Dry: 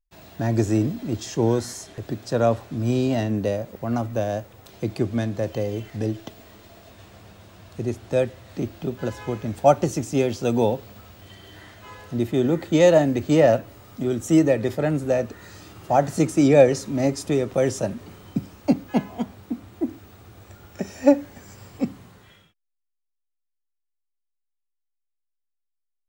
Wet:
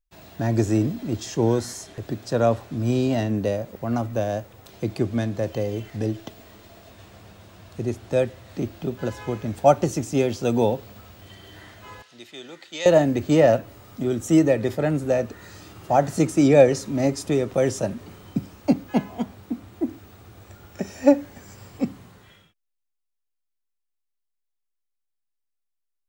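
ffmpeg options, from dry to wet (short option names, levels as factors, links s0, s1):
-filter_complex "[0:a]asettb=1/sr,asplit=3[s0][s1][s2];[s0]atrim=end=12.024[s3];[s1]atrim=start=12.02:end=12.86,asetpts=PTS-STARTPTS,afade=t=in:d=0.004:c=qsin,afade=t=out:st=0.836:d=0.004:c=qsin,bandpass=f=4000:t=q:w=0.98[s4];[s2]atrim=start=12.856[s5];[s3][s4]acrossfade=d=0.004:c1=hsin:c2=qsin[s6];[s6][s5]acrossfade=d=0.004:c1=qsin:c2=hsin"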